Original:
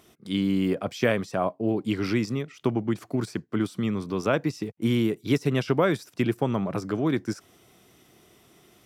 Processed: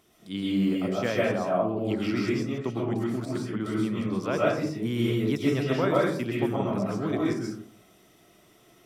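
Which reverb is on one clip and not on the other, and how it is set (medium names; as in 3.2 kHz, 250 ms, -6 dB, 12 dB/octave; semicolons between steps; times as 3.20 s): algorithmic reverb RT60 0.61 s, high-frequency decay 0.4×, pre-delay 90 ms, DRR -5 dB; trim -6.5 dB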